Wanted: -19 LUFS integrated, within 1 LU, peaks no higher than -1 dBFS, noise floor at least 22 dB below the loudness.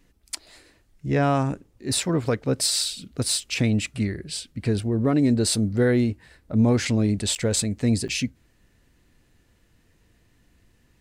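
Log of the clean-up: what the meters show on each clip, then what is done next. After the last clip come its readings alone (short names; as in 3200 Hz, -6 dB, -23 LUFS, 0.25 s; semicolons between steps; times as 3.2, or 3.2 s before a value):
dropouts 2; longest dropout 8.3 ms; loudness -23.5 LUFS; peak -11.0 dBFS; loudness target -19.0 LUFS
-> interpolate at 7.35/8.08, 8.3 ms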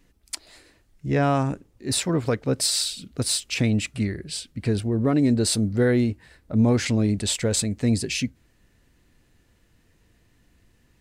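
dropouts 0; loudness -23.5 LUFS; peak -11.0 dBFS; loudness target -19.0 LUFS
-> gain +4.5 dB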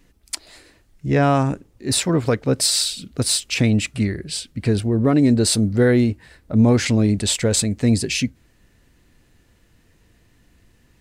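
loudness -19.0 LUFS; peak -6.5 dBFS; noise floor -58 dBFS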